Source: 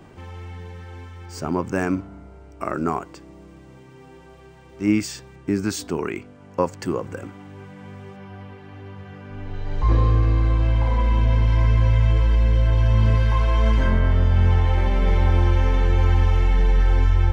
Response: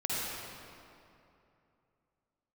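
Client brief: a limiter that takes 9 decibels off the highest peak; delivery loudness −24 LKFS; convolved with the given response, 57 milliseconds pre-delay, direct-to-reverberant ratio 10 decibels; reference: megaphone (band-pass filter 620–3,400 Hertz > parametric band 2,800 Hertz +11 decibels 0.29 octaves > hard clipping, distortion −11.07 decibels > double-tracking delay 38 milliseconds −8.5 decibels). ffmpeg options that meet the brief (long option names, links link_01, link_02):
-filter_complex "[0:a]alimiter=limit=-14.5dB:level=0:latency=1,asplit=2[link_01][link_02];[1:a]atrim=start_sample=2205,adelay=57[link_03];[link_02][link_03]afir=irnorm=-1:irlink=0,volume=-17.5dB[link_04];[link_01][link_04]amix=inputs=2:normalize=0,highpass=620,lowpass=3400,equalizer=frequency=2800:width_type=o:width=0.29:gain=11,asoftclip=type=hard:threshold=-31dB,asplit=2[link_05][link_06];[link_06]adelay=38,volume=-8.5dB[link_07];[link_05][link_07]amix=inputs=2:normalize=0,volume=12.5dB"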